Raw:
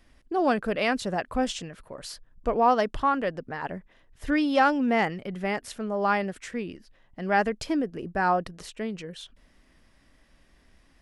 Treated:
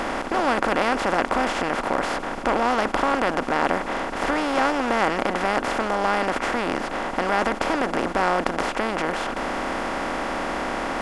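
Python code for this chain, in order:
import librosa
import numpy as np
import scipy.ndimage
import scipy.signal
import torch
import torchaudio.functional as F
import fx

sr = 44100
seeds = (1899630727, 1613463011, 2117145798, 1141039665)

y = fx.bin_compress(x, sr, power=0.2)
y = y * 10.0 ** (-6.0 / 20.0)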